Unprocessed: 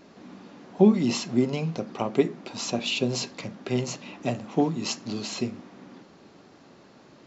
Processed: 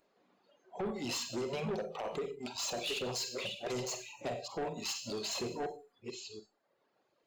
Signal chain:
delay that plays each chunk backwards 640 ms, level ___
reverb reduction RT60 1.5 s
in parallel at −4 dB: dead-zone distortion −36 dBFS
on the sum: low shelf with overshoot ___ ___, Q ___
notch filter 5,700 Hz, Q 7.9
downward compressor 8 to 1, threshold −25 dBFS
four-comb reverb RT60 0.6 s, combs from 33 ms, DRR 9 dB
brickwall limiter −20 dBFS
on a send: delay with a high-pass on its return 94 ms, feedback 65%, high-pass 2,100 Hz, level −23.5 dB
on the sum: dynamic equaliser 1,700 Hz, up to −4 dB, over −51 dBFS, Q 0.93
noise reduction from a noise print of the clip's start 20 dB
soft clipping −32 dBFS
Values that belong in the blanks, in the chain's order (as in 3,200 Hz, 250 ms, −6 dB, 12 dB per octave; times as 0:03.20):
−9.5 dB, 340 Hz, −9 dB, 1.5